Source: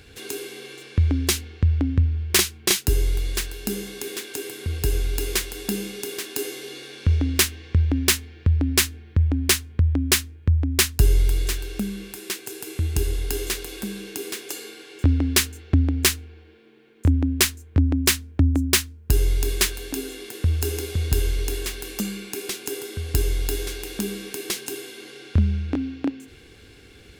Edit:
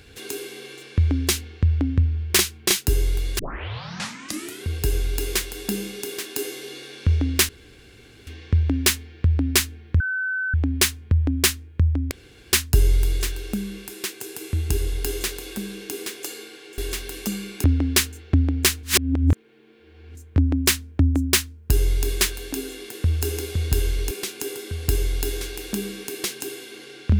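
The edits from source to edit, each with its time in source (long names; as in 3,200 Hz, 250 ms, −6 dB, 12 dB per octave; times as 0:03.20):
0:03.39: tape start 1.26 s
0:07.49: splice in room tone 0.78 s
0:09.22: insert tone 1,520 Hz −22.5 dBFS 0.54 s
0:10.79: splice in room tone 0.42 s
0:16.23–0:17.55: reverse
0:21.51–0:22.37: move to 0:15.04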